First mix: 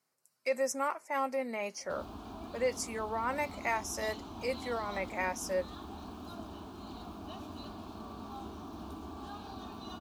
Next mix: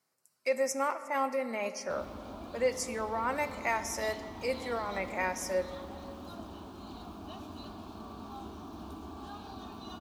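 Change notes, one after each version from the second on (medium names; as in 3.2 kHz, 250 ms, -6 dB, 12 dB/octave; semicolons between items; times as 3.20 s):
reverb: on, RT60 2.7 s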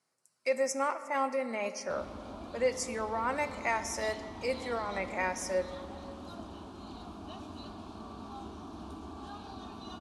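master: add steep low-pass 11 kHz 48 dB/octave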